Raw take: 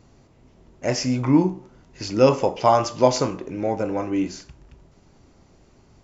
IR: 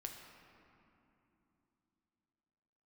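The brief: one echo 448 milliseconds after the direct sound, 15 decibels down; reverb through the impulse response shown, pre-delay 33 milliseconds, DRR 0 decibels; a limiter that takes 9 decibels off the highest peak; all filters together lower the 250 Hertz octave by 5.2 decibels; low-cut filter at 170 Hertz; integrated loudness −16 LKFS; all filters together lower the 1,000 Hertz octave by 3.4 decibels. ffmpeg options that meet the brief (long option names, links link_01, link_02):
-filter_complex "[0:a]highpass=170,equalizer=frequency=250:width_type=o:gain=-5.5,equalizer=frequency=1000:width_type=o:gain=-4,alimiter=limit=-15dB:level=0:latency=1,aecho=1:1:448:0.178,asplit=2[link_01][link_02];[1:a]atrim=start_sample=2205,adelay=33[link_03];[link_02][link_03]afir=irnorm=-1:irlink=0,volume=3dB[link_04];[link_01][link_04]amix=inputs=2:normalize=0,volume=9.5dB"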